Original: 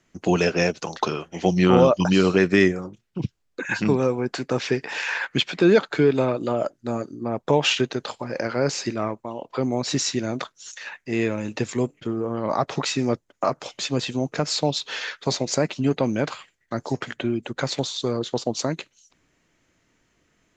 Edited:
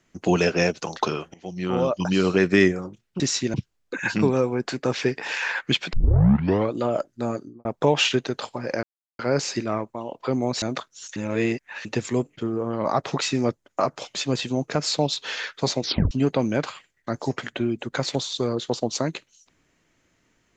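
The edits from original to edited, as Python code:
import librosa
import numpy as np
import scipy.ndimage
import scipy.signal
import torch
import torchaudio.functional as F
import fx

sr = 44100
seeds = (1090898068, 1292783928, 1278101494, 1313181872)

y = fx.studio_fade_out(x, sr, start_s=7.03, length_s=0.28)
y = fx.edit(y, sr, fx.fade_in_from(start_s=1.34, length_s=1.22, floor_db=-23.0),
    fx.tape_start(start_s=5.59, length_s=0.8),
    fx.insert_silence(at_s=8.49, length_s=0.36),
    fx.move(start_s=9.92, length_s=0.34, to_s=3.2),
    fx.reverse_span(start_s=10.8, length_s=0.69),
    fx.tape_stop(start_s=15.46, length_s=0.29), tone=tone)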